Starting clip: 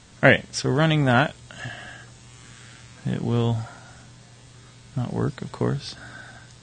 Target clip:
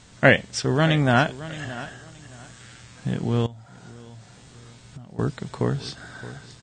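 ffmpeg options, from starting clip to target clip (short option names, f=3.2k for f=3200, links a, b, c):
-filter_complex "[0:a]asettb=1/sr,asplit=3[a][b][c];[a]atrim=end=1.644[d];[b]atrim=start=1.64:end=2.6,asetpts=PTS-STARTPTS,afade=t=in:d=0.004:c=qsin,afade=t=out:st=0.956:d=0.004:c=qsin,equalizer=f=2.3k:t=o:w=1:g=-5[e];[c]atrim=start=2.596[f];[d][e]acrossfade=d=0.004:c1=hsin:c2=qsin[g];[g][f]acrossfade=d=0.004:c1=qsin:c2=hsin,aecho=1:1:621|1242:0.158|0.0365,asettb=1/sr,asplit=3[h][i][j];[h]atrim=end=3.464[k];[i]atrim=start=3.46:end=5.19,asetpts=PTS-STARTPTS,afade=t=in:d=0.004:c=qsin,afade=t=out:st=1.726:d=0.004:c=qsin,acompressor=threshold=-39dB:ratio=12[l];[j]atrim=start=5.186[m];[k][l]acrossfade=d=0.004:c1=hsin:c2=qsin[n];[n][m]acrossfade=d=0.004:c1=qsin:c2=hsin"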